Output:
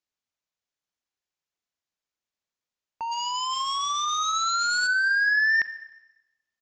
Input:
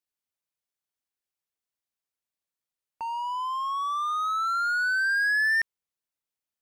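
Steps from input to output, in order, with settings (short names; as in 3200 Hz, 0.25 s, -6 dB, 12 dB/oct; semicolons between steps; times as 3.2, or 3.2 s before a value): 3.11–4.86 spectral whitening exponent 0.3; downsampling 16000 Hz; Schroeder reverb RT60 1 s, combs from 30 ms, DRR 13.5 dB; gain +2 dB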